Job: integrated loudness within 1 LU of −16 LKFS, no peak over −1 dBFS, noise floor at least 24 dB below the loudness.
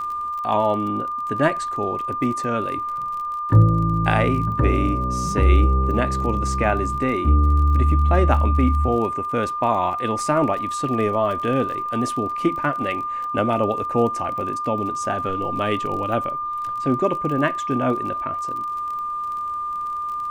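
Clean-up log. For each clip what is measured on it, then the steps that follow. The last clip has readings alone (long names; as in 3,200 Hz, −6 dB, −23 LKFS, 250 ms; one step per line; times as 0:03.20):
crackle rate 31 per second; interfering tone 1,200 Hz; level of the tone −24 dBFS; integrated loudness −21.5 LKFS; sample peak −3.5 dBFS; target loudness −16.0 LKFS
→ click removal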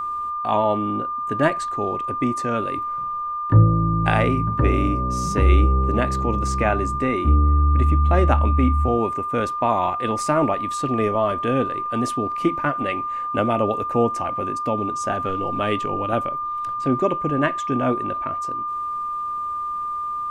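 crackle rate 0 per second; interfering tone 1,200 Hz; level of the tone −24 dBFS
→ notch filter 1,200 Hz, Q 30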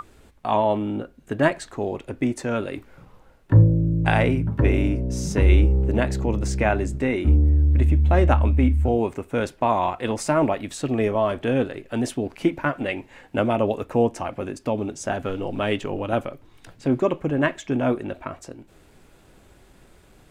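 interfering tone none found; integrated loudness −22.5 LKFS; sample peak −4.0 dBFS; target loudness −16.0 LKFS
→ level +6.5 dB
brickwall limiter −1 dBFS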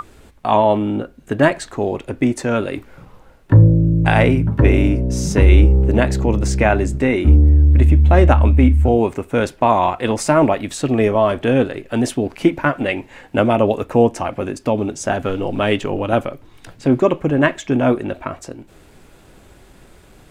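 integrated loudness −16.5 LKFS; sample peak −1.0 dBFS; background noise floor −47 dBFS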